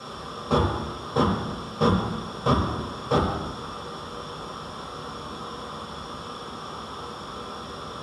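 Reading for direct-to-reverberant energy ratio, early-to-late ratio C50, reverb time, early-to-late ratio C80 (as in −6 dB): −7.0 dB, 3.0 dB, 1.2 s, 6.0 dB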